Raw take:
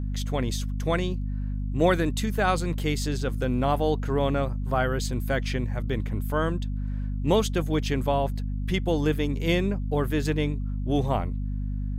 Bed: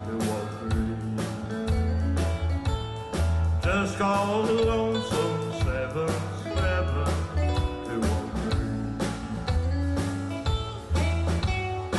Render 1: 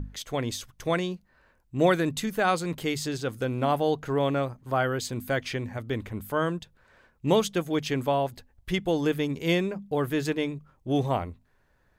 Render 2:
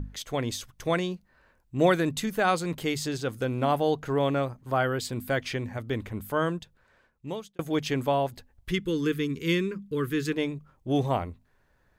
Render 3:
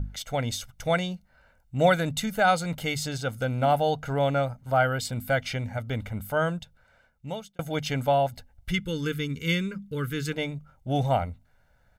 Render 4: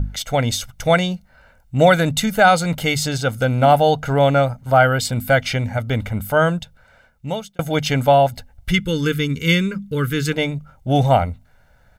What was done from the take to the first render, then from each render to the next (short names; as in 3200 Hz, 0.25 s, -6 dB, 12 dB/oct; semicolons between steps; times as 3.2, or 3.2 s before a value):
notches 50/100/150/200/250 Hz
4.77–5.42 notch 6400 Hz; 6.48–7.59 fade out; 8.71–10.33 Chebyshev band-stop 420–1200 Hz
comb 1.4 ms, depth 72%
gain +9.5 dB; limiter -2 dBFS, peak gain reduction 3 dB